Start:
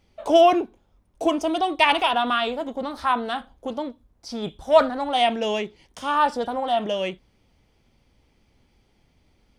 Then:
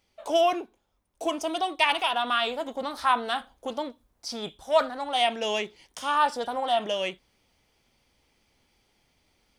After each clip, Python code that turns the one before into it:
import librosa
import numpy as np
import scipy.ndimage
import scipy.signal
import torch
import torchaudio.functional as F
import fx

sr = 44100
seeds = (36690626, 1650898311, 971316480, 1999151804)

y = fx.high_shelf(x, sr, hz=5500.0, db=6.0)
y = fx.rider(y, sr, range_db=3, speed_s=0.5)
y = fx.low_shelf(y, sr, hz=370.0, db=-10.5)
y = F.gain(torch.from_numpy(y), -2.0).numpy()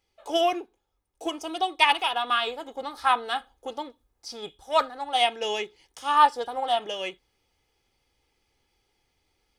y = x + 0.46 * np.pad(x, (int(2.4 * sr / 1000.0), 0))[:len(x)]
y = fx.upward_expand(y, sr, threshold_db=-34.0, expansion=1.5)
y = F.gain(torch.from_numpy(y), 3.5).numpy()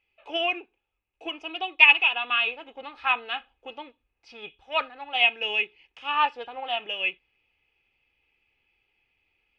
y = fx.lowpass_res(x, sr, hz=2600.0, q=11.0)
y = F.gain(torch.from_numpy(y), -7.0).numpy()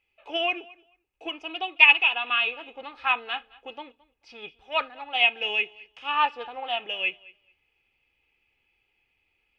y = fx.echo_feedback(x, sr, ms=218, feedback_pct=16, wet_db=-23.0)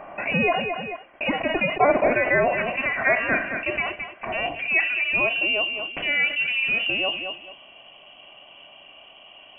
y = fx.filter_sweep_bandpass(x, sr, from_hz=1600.0, to_hz=290.0, start_s=4.14, end_s=5.46, q=1.3)
y = fx.freq_invert(y, sr, carrier_hz=3200)
y = fx.env_flatten(y, sr, amount_pct=70)